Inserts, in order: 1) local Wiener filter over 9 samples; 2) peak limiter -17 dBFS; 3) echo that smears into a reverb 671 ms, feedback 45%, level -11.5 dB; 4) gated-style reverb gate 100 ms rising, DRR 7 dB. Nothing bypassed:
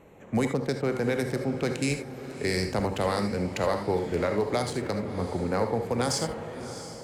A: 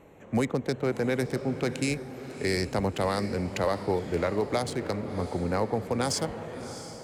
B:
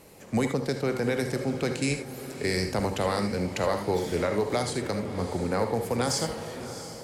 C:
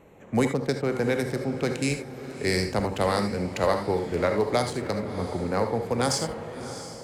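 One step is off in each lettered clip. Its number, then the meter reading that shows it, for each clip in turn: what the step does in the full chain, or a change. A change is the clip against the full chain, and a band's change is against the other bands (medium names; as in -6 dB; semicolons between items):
4, echo-to-direct -5.0 dB to -10.5 dB; 1, 8 kHz band +2.0 dB; 2, crest factor change +2.5 dB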